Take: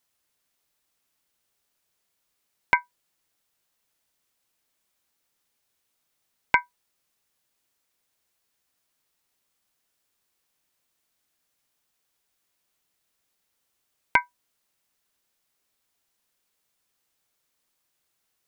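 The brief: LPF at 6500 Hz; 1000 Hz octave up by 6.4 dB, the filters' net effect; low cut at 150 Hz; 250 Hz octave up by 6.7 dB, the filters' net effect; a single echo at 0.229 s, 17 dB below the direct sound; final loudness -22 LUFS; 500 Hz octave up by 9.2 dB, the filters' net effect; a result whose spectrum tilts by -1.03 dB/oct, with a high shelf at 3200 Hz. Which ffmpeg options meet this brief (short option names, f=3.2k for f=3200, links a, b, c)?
-af "highpass=150,lowpass=6.5k,equalizer=f=250:t=o:g=6,equalizer=f=500:t=o:g=9,equalizer=f=1k:t=o:g=5,highshelf=f=3.2k:g=-8.5,aecho=1:1:229:0.141,volume=0.5dB"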